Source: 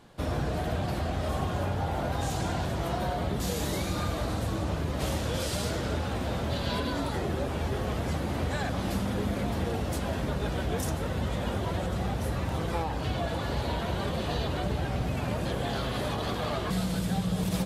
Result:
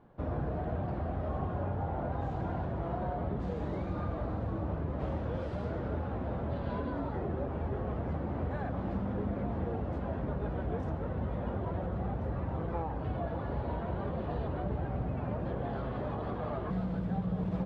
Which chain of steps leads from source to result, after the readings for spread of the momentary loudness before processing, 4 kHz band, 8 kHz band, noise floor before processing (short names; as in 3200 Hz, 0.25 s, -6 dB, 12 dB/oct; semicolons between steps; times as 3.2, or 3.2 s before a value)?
1 LU, -23.0 dB, under -35 dB, -33 dBFS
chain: LPF 1200 Hz 12 dB/oct; gain -4 dB